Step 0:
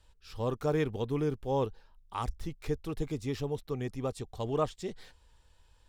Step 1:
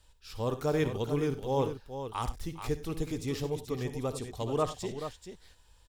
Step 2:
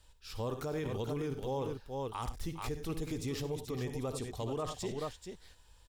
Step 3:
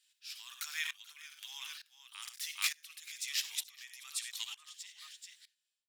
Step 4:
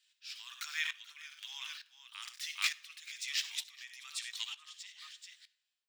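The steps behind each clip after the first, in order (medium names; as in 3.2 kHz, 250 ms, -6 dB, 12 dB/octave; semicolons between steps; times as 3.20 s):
treble shelf 4.6 kHz +7.5 dB; on a send: multi-tap echo 58/70/95/433 ms -15/-15/-17.5/-9 dB
peak limiter -28 dBFS, peak gain reduction 11 dB
fade out at the end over 1.75 s; inverse Chebyshev high-pass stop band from 570 Hz, stop band 60 dB; sawtooth tremolo in dB swelling 1.1 Hz, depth 21 dB; trim +17 dB
high-pass 910 Hz 12 dB/octave; peaking EQ 12 kHz -15 dB 1 oct; on a send at -17 dB: reverberation RT60 0.90 s, pre-delay 18 ms; on the sum: trim +3 dB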